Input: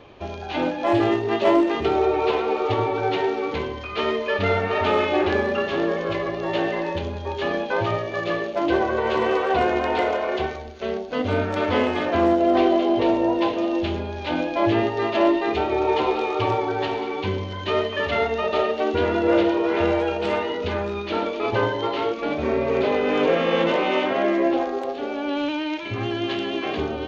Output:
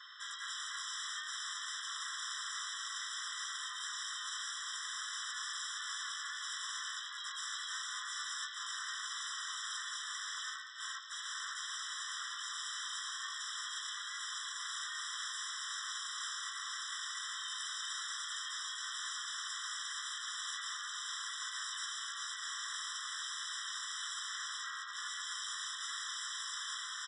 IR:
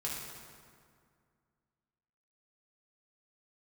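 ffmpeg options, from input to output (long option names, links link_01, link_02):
-filter_complex "[0:a]highpass=frequency=1400:width=0.5412,highpass=frequency=1400:width=1.3066,acrossover=split=3000[link_01][link_02];[link_01]acompressor=threshold=-42dB:ratio=8[link_03];[link_03][link_02]amix=inputs=2:normalize=0,alimiter=level_in=7dB:limit=-24dB:level=0:latency=1:release=93,volume=-7dB,aresample=16000,aeval=exprs='(mod(89.1*val(0)+1,2)-1)/89.1':channel_layout=same,aresample=44100,aeval=exprs='val(0)+0.000794*sin(2*PI*5300*n/s)':channel_layout=same,asplit=4[link_04][link_05][link_06][link_07];[link_05]asetrate=29433,aresample=44100,atempo=1.49831,volume=-7dB[link_08];[link_06]asetrate=37084,aresample=44100,atempo=1.18921,volume=-3dB[link_09];[link_07]asetrate=52444,aresample=44100,atempo=0.840896,volume=-1dB[link_10];[link_04][link_08][link_09][link_10]amix=inputs=4:normalize=0,afftfilt=real='re*eq(mod(floor(b*sr/1024/1000),2),1)':imag='im*eq(mod(floor(b*sr/1024/1000),2),1)':win_size=1024:overlap=0.75,volume=2dB"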